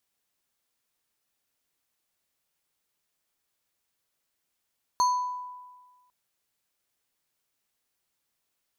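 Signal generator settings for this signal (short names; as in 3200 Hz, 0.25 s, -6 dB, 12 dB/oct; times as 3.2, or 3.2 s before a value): FM tone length 1.10 s, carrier 994 Hz, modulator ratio 5.35, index 0.5, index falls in 0.79 s exponential, decay 1.43 s, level -18 dB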